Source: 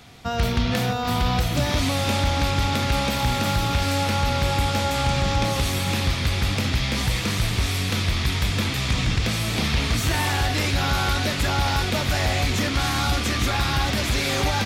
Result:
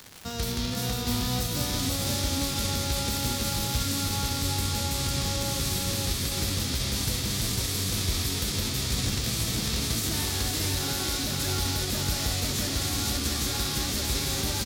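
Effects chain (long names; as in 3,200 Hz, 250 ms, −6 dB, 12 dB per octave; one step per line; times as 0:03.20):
spectral envelope flattened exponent 0.6
flat-topped bell 1,300 Hz −9 dB 2.7 octaves
brickwall limiter −15 dBFS, peak gain reduction 6 dB
single-tap delay 499 ms −3 dB
surface crackle 320 per second −26 dBFS
level −4.5 dB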